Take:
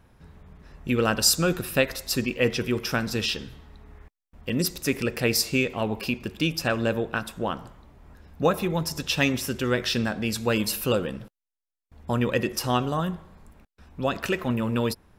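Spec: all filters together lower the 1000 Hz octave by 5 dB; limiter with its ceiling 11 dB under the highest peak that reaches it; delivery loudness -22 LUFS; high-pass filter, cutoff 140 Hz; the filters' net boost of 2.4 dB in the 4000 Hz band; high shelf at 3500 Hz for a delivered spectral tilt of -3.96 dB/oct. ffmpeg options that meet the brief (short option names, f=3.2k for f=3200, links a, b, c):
-af "highpass=140,equalizer=f=1k:t=o:g=-7,highshelf=f=3.5k:g=-3,equalizer=f=4k:t=o:g=6,volume=6.5dB,alimiter=limit=-9.5dB:level=0:latency=1"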